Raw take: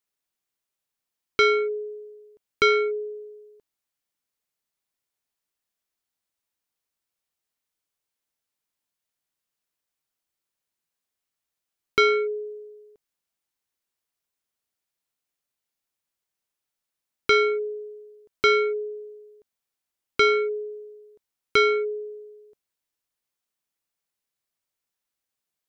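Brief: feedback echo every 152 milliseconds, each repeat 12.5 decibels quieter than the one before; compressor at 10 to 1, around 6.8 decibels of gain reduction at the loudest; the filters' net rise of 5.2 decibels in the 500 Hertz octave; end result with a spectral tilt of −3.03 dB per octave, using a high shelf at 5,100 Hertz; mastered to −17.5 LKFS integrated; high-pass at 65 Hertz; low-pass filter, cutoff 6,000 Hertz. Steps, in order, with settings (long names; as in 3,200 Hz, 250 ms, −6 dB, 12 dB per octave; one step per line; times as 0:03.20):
high-pass filter 65 Hz
low-pass filter 6,000 Hz
parametric band 500 Hz +6.5 dB
high-shelf EQ 5,100 Hz +7.5 dB
downward compressor 10 to 1, threshold −18 dBFS
repeating echo 152 ms, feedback 24%, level −12.5 dB
level +6 dB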